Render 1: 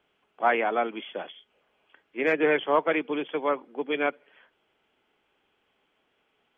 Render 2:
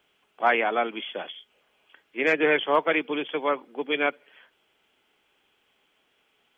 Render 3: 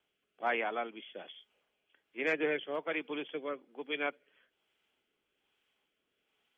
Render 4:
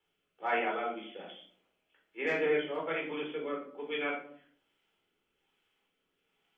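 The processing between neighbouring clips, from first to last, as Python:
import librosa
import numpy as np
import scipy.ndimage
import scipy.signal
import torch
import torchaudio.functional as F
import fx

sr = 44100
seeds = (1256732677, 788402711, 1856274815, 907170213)

y1 = fx.high_shelf(x, sr, hz=2800.0, db=11.0)
y2 = fx.rotary(y1, sr, hz=1.2)
y2 = y2 * librosa.db_to_amplitude(-9.0)
y3 = fx.room_shoebox(y2, sr, seeds[0], volume_m3=610.0, walls='furnished', distance_m=4.2)
y3 = y3 * librosa.db_to_amplitude(-4.5)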